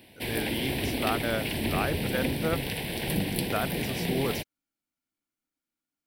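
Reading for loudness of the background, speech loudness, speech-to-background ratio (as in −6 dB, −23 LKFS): −30.5 LKFS, −33.5 LKFS, −3.0 dB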